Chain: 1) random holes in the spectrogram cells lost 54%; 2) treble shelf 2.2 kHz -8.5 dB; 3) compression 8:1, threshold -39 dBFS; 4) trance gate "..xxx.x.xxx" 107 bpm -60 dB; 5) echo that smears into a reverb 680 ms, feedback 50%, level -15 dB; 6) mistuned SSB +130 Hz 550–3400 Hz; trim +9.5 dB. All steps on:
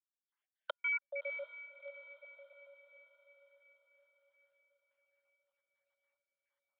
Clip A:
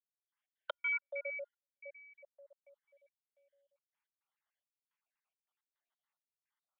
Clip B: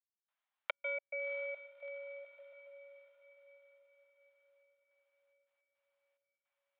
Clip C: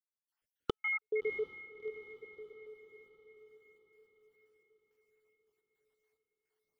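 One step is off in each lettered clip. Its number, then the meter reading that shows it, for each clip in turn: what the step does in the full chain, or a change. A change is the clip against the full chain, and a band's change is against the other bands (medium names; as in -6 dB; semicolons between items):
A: 5, momentary loudness spread change -2 LU; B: 1, 500 Hz band +5.0 dB; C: 6, 500 Hz band +7.5 dB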